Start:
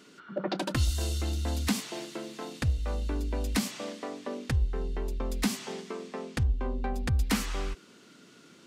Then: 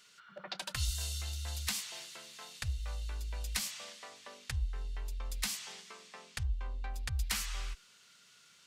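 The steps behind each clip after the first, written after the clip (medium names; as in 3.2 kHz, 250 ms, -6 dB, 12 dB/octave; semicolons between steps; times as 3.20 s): amplifier tone stack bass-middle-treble 10-0-10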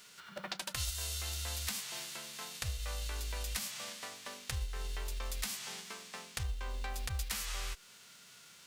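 formants flattened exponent 0.6; compression 2.5:1, threshold -43 dBFS, peak gain reduction 10 dB; trim +5 dB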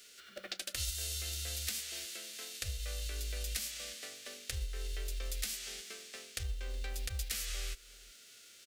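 static phaser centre 390 Hz, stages 4; echo from a far wall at 63 m, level -21 dB; trim +1 dB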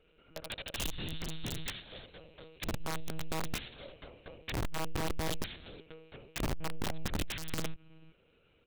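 local Wiener filter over 25 samples; monotone LPC vocoder at 8 kHz 160 Hz; integer overflow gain 35 dB; trim +6 dB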